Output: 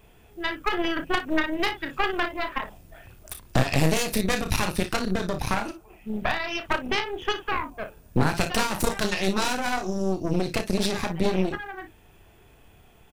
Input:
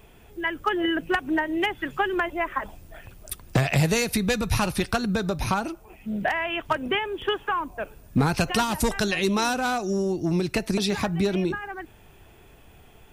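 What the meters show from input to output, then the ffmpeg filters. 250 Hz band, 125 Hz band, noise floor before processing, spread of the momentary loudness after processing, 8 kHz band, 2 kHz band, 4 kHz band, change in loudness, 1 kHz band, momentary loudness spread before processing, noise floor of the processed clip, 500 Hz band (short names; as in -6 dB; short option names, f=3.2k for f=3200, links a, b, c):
-2.0 dB, -2.0 dB, -52 dBFS, 10 LU, -0.5 dB, -1.0 dB, 0.0 dB, -1.0 dB, -1.5 dB, 11 LU, -54 dBFS, -1.5 dB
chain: -af "aecho=1:1:32|57:0.447|0.316,aeval=exprs='0.355*(cos(1*acos(clip(val(0)/0.355,-1,1)))-cos(1*PI/2))+0.141*(cos(4*acos(clip(val(0)/0.355,-1,1)))-cos(4*PI/2))':c=same,volume=-4dB"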